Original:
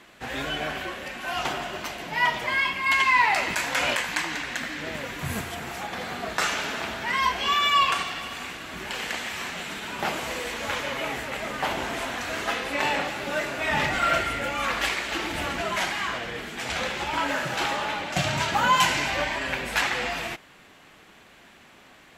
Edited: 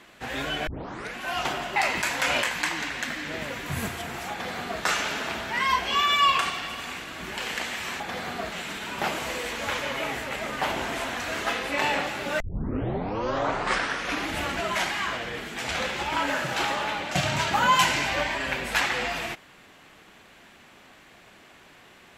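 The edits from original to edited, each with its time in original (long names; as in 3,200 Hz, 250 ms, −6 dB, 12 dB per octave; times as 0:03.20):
0:00.67: tape start 0.49 s
0:01.76–0:03.29: remove
0:05.84–0:06.36: duplicate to 0:09.53
0:13.41: tape start 2.00 s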